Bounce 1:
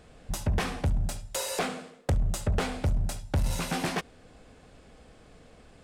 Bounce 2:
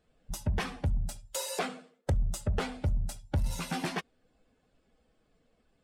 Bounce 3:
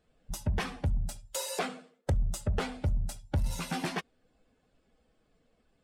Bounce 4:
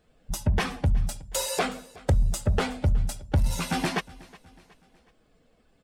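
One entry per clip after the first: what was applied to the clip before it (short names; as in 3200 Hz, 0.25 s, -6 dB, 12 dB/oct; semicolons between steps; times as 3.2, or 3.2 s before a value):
per-bin expansion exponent 1.5; gain -1 dB
nothing audible
feedback echo 0.368 s, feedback 47%, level -22 dB; gain +6.5 dB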